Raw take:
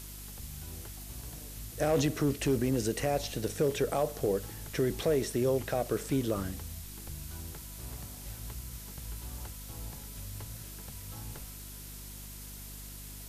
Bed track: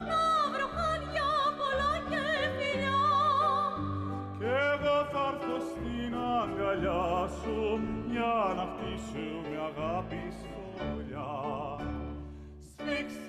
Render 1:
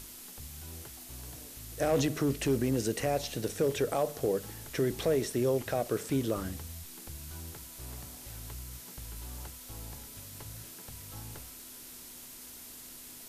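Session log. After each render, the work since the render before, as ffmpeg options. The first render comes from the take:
ffmpeg -i in.wav -af "bandreject=frequency=50:width_type=h:width=6,bandreject=frequency=100:width_type=h:width=6,bandreject=frequency=150:width_type=h:width=6,bandreject=frequency=200:width_type=h:width=6" out.wav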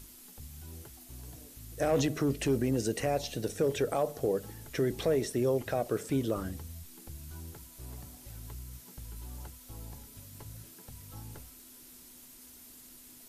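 ffmpeg -i in.wav -af "afftdn=noise_reduction=7:noise_floor=-48" out.wav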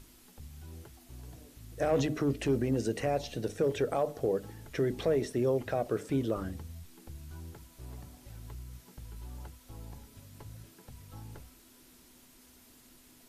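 ffmpeg -i in.wav -af "highshelf=frequency=5600:gain=-10.5,bandreject=frequency=50.57:width_type=h:width=4,bandreject=frequency=101.14:width_type=h:width=4,bandreject=frequency=151.71:width_type=h:width=4,bandreject=frequency=202.28:width_type=h:width=4,bandreject=frequency=252.85:width_type=h:width=4,bandreject=frequency=303.42:width_type=h:width=4" out.wav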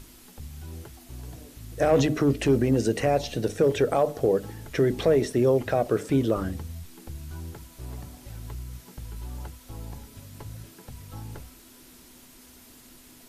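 ffmpeg -i in.wav -af "volume=7.5dB" out.wav

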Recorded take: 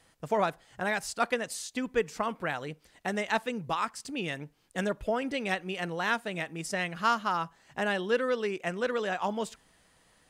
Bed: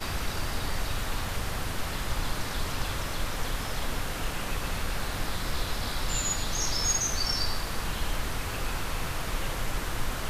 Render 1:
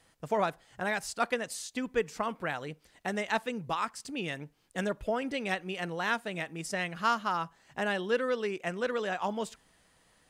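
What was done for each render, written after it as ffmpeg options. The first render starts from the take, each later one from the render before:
ffmpeg -i in.wav -af "volume=-1.5dB" out.wav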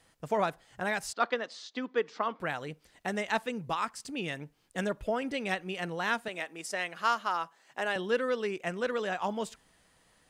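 ffmpeg -i in.wav -filter_complex "[0:a]asettb=1/sr,asplit=3[link_01][link_02][link_03];[link_01]atrim=end=1.134[link_04];[link_02]atrim=start=1.13:end=2.4,asetpts=PTS-STARTPTS,afade=type=in:duration=0.004:curve=qsin,afade=type=out:start_time=1.266:duration=0.004:curve=qsin,highpass=frequency=240:width=0.5412,highpass=frequency=240:width=1.3066,equalizer=frequency=1200:width_type=q:width=4:gain=4,equalizer=frequency=2500:width_type=q:width=4:gain=-4,equalizer=frequency=3600:width_type=q:width=4:gain=3,lowpass=frequency=4900:width=0.5412,lowpass=frequency=4900:width=1.3066[link_05];[link_03]atrim=start=2.396[link_06];[link_04][link_05]acrossfade=duration=0.004:curve1=hsin:curve2=qsin[link_07];[link_07][link_06]acrossfade=duration=0.004:curve1=qsin:curve2=hsin,asettb=1/sr,asplit=3[link_08][link_09][link_10];[link_08]atrim=end=6.284[link_11];[link_09]atrim=start=6.28:end=7.96,asetpts=PTS-STARTPTS,afade=type=in:duration=0.004:curve=qsin,afade=type=out:start_time=1.676:duration=0.004:curve=qsin,highpass=360[link_12];[link_10]atrim=start=7.956[link_13];[link_11][link_12]acrossfade=duration=0.004:curve1=hsin:curve2=qsin[link_14];[link_14][link_13]acrossfade=duration=0.004:curve1=qsin:curve2=hsin" out.wav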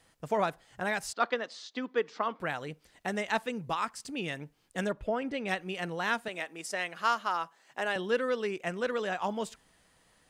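ffmpeg -i in.wav -filter_complex "[0:a]asettb=1/sr,asplit=3[link_01][link_02][link_03];[link_01]atrim=end=4.924[link_04];[link_02]atrim=start=4.92:end=5.48,asetpts=PTS-STARTPTS,afade=type=in:duration=0.004:curve=qsin,afade=type=out:start_time=0.556:duration=0.004:curve=qsin,lowpass=frequency=2600:poles=1[link_05];[link_03]atrim=start=5.476[link_06];[link_04][link_05]acrossfade=duration=0.004:curve1=hsin:curve2=qsin[link_07];[link_07][link_06]acrossfade=duration=0.004:curve1=qsin:curve2=hsin" out.wav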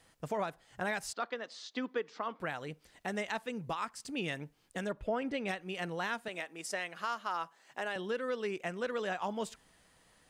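ffmpeg -i in.wav -af "alimiter=level_in=0.5dB:limit=-24dB:level=0:latency=1:release=388,volume=-0.5dB" out.wav

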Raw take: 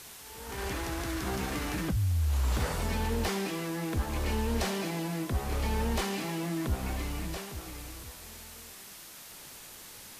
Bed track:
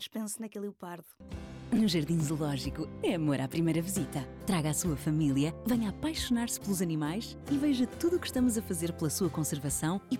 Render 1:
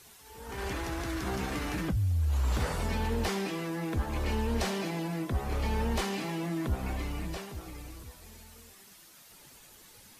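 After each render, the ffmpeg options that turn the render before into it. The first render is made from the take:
ffmpeg -i in.wav -af "afftdn=noise_reduction=9:noise_floor=-48" out.wav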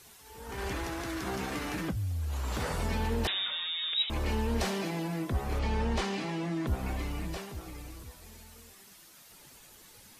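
ffmpeg -i in.wav -filter_complex "[0:a]asettb=1/sr,asplit=3[link_01][link_02][link_03];[link_01]atrim=end=0.874[link_04];[link_02]atrim=start=0.87:end=2.69,asetpts=PTS-STARTPTS,afade=type=in:duration=0.004:curve=qsin,afade=type=out:start_time=1.816:duration=0.004:curve=qsin,lowshelf=frequency=95:gain=-9.5[link_05];[link_03]atrim=start=2.686[link_06];[link_04][link_05]acrossfade=duration=0.004:curve1=hsin:curve2=qsin[link_07];[link_07][link_06]acrossfade=duration=0.004:curve1=qsin:curve2=hsin,asettb=1/sr,asplit=3[link_08][link_09][link_10];[link_08]atrim=end=3.274[link_11];[link_09]atrim=start=3.27:end=4.1,asetpts=PTS-STARTPTS,afade=type=in:duration=0.004:curve=qsin,afade=type=out:start_time=0.826:duration=0.004:curve=qsin,lowpass=frequency=3300:width_type=q:width=0.5098,lowpass=frequency=3300:width_type=q:width=0.6013,lowpass=frequency=3300:width_type=q:width=0.9,lowpass=frequency=3300:width_type=q:width=2.563,afreqshift=-3900[link_12];[link_10]atrim=start=4.096[link_13];[link_11][link_12]acrossfade=duration=0.004:curve1=hsin:curve2=qsin[link_14];[link_14][link_13]acrossfade=duration=0.004:curve1=qsin:curve2=hsin,asettb=1/sr,asplit=3[link_15][link_16][link_17];[link_15]atrim=end=5.594[link_18];[link_16]atrim=start=5.59:end=6.67,asetpts=PTS-STARTPTS,afade=type=in:duration=0.004:curve=qsin,afade=type=out:start_time=1.076:duration=0.004:curve=qsin,lowpass=6800[link_19];[link_17]atrim=start=6.666[link_20];[link_18][link_19]acrossfade=duration=0.004:curve1=hsin:curve2=qsin[link_21];[link_21][link_20]acrossfade=duration=0.004:curve1=qsin:curve2=hsin" out.wav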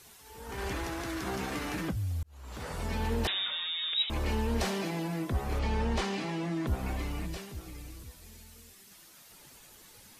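ffmpeg -i in.wav -filter_complex "[0:a]asettb=1/sr,asplit=3[link_01][link_02][link_03];[link_01]atrim=end=7.264[link_04];[link_02]atrim=start=7.26:end=8.91,asetpts=PTS-STARTPTS,afade=type=in:duration=0.004:curve=qsin,afade=type=out:start_time=1.646:duration=0.004:curve=qsin,equalizer=frequency=850:width_type=o:width=2:gain=-6[link_05];[link_03]atrim=start=8.906[link_06];[link_04][link_05]acrossfade=duration=0.004:curve1=hsin:curve2=qsin[link_07];[link_07][link_06]acrossfade=duration=0.004:curve1=qsin:curve2=hsin,asplit=2[link_08][link_09];[link_08]atrim=end=2.23,asetpts=PTS-STARTPTS,afade=type=out:start_time=2.226:duration=0.004:curve=hsin[link_10];[link_09]atrim=start=2.23,asetpts=PTS-STARTPTS,afade=type=in:duration=0.88[link_11];[link_10][link_11]concat=n=2:v=0:a=1" out.wav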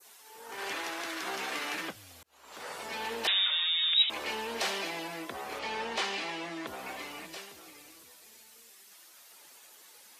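ffmpeg -i in.wav -af "highpass=470,adynamicequalizer=threshold=0.00447:dfrequency=3000:dqfactor=0.74:tfrequency=3000:tqfactor=0.74:attack=5:release=100:ratio=0.375:range=3:mode=boostabove:tftype=bell" out.wav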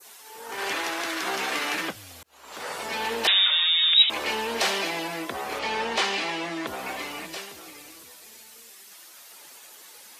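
ffmpeg -i in.wav -af "volume=7.5dB" out.wav

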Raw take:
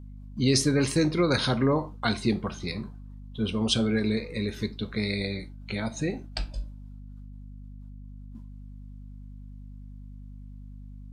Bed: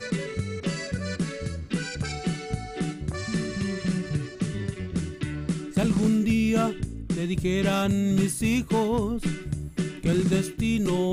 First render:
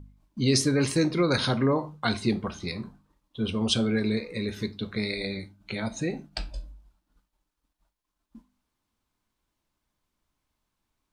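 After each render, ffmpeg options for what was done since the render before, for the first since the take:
ffmpeg -i in.wav -af "bandreject=frequency=50:width_type=h:width=4,bandreject=frequency=100:width_type=h:width=4,bandreject=frequency=150:width_type=h:width=4,bandreject=frequency=200:width_type=h:width=4,bandreject=frequency=250:width_type=h:width=4" out.wav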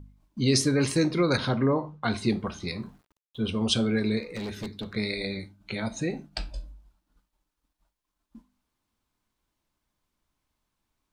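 ffmpeg -i in.wav -filter_complex "[0:a]asettb=1/sr,asplit=3[link_01][link_02][link_03];[link_01]atrim=end=1.374[link_04];[link_02]atrim=start=1.37:end=2.14,asetpts=PTS-STARTPTS,afade=type=in:duration=0.004:curve=qsin,afade=type=out:start_time=0.766:duration=0.004:curve=qsin,aemphasis=mode=reproduction:type=75kf[link_05];[link_03]atrim=start=2.136[link_06];[link_04][link_05]acrossfade=duration=0.004:curve1=hsin:curve2=qsin[link_07];[link_07][link_06]acrossfade=duration=0.004:curve1=qsin:curve2=hsin,asettb=1/sr,asplit=3[link_08][link_09][link_10];[link_08]atrim=end=2.794[link_11];[link_09]atrim=start=2.79:end=3.41,asetpts=PTS-STARTPTS,afade=type=in:duration=0.004:curve=qsin,afade=type=out:start_time=0.616:duration=0.004:curve=qsin,aeval=exprs='val(0)*gte(abs(val(0)),0.001)':channel_layout=same[link_12];[link_10]atrim=start=3.406[link_13];[link_11][link_12]acrossfade=duration=0.004:curve1=hsin:curve2=qsin[link_14];[link_14][link_13]acrossfade=duration=0.004:curve1=qsin:curve2=hsin,asplit=3[link_15][link_16][link_17];[link_15]afade=type=out:start_time=4.22:duration=0.02[link_18];[link_16]volume=30.5dB,asoftclip=hard,volume=-30.5dB,afade=type=in:start_time=4.22:duration=0.02,afade=type=out:start_time=4.94:duration=0.02[link_19];[link_17]afade=type=in:start_time=4.94:duration=0.02[link_20];[link_18][link_19][link_20]amix=inputs=3:normalize=0" out.wav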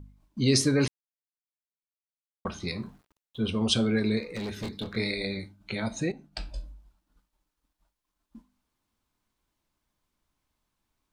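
ffmpeg -i in.wav -filter_complex "[0:a]asettb=1/sr,asplit=3[link_01][link_02][link_03];[link_01]atrim=end=4.604[link_04];[link_02]atrim=start=4.6:end=5.11,asetpts=PTS-STARTPTS,afade=type=in:duration=0.004:curve=qsin,afade=type=out:start_time=0.506:duration=0.004:curve=qsin,asplit=2[link_05][link_06];[link_06]adelay=26,volume=-4dB[link_07];[link_05][link_07]amix=inputs=2:normalize=0,atrim=end_sample=22491[link_08];[link_03]atrim=start=5.106[link_09];[link_04][link_08]acrossfade=duration=0.004:curve1=hsin:curve2=qsin[link_10];[link_10][link_09]acrossfade=duration=0.004:curve1=qsin:curve2=hsin,asplit=4[link_11][link_12][link_13][link_14];[link_11]atrim=end=0.88,asetpts=PTS-STARTPTS,afade=type=out:start_time=0.876:duration=0.004:curve=hsin[link_15];[link_12]atrim=start=0.88:end=2.45,asetpts=PTS-STARTPTS,volume=0[link_16];[link_13]atrim=start=2.45:end=6.12,asetpts=PTS-STARTPTS,afade=type=in:duration=0.004:curve=hsin,afade=type=out:start_time=3.666:duration=0.004:curve=hsin:silence=0.237137[link_17];[link_14]atrim=start=6.12,asetpts=PTS-STARTPTS,afade=type=in:duration=0.47:silence=0.237137[link_18];[link_15][link_16][link_17][link_18]concat=n=4:v=0:a=1" out.wav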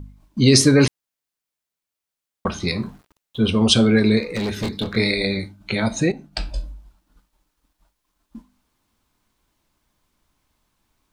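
ffmpeg -i in.wav -af "volume=10dB,alimiter=limit=-2dB:level=0:latency=1" out.wav

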